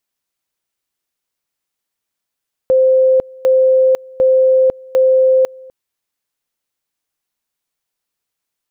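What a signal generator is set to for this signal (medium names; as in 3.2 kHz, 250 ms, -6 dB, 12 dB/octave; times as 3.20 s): two-level tone 521 Hz -7.5 dBFS, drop 25.5 dB, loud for 0.50 s, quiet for 0.25 s, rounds 4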